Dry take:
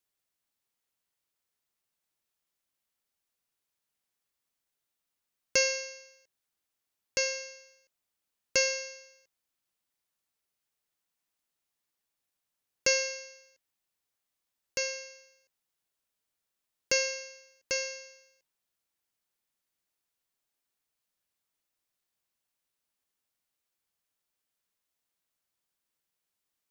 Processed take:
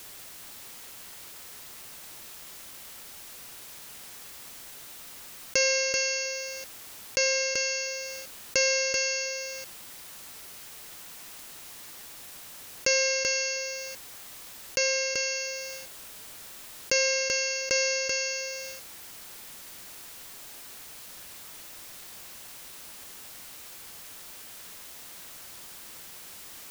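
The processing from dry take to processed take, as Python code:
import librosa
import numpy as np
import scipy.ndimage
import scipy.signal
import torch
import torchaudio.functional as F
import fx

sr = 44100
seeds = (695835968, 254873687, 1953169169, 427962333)

y = x + 10.0 ** (-13.0 / 20.0) * np.pad(x, (int(385 * sr / 1000.0), 0))[:len(x)]
y = fx.env_flatten(y, sr, amount_pct=70)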